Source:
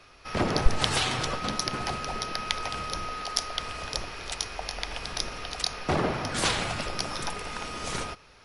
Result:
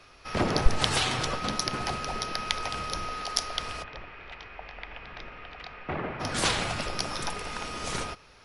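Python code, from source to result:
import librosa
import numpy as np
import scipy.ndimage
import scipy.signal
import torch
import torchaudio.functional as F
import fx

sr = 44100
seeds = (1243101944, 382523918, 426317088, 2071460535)

y = fx.ladder_lowpass(x, sr, hz=2900.0, resonance_pct=35, at=(3.82, 6.19), fade=0.02)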